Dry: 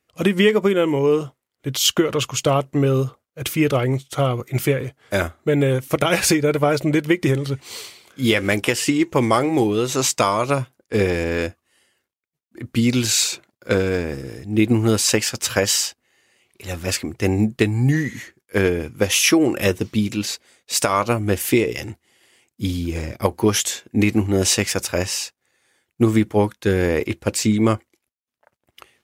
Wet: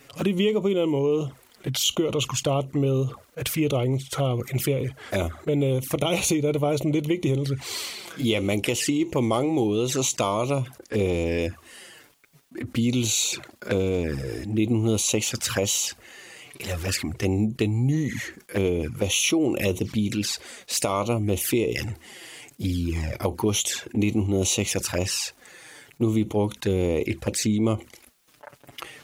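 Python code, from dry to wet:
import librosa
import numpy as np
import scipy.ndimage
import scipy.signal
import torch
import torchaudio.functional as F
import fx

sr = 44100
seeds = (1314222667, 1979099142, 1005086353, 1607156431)

y = fx.env_flanger(x, sr, rest_ms=7.3, full_db=-17.0)
y = fx.env_flatten(y, sr, amount_pct=50)
y = y * librosa.db_to_amplitude(-7.0)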